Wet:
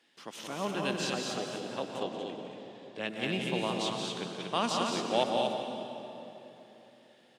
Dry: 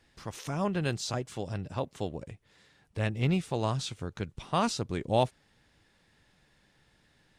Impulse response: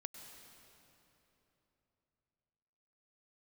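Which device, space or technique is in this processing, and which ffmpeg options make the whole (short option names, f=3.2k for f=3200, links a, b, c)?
stadium PA: -filter_complex "[0:a]highpass=f=210:w=0.5412,highpass=f=210:w=1.3066,equalizer=f=3.1k:t=o:w=0.52:g=8,aecho=1:1:174.9|236.2:0.501|0.631[a];[1:a]atrim=start_sample=2205[b];[a][b]afir=irnorm=-1:irlink=0,asettb=1/sr,asplit=3[c][d][e];[c]atrim=end=2.034[f];[d]atrim=start=2.03:end=3.08,asetpts=PTS-STARTPTS,afade=t=in:d=0.004:c=qsin,afade=t=out:st=1.046:d=0.004:c=qsin,lowpass=6.5k[g];[e]atrim=start=3.076[h];[f][g]acrossfade=d=0.004:c1=hsin:c2=qsin[i];[i][h]acrossfade=d=0.004:c1=qsin:c2=hsin,volume=2dB"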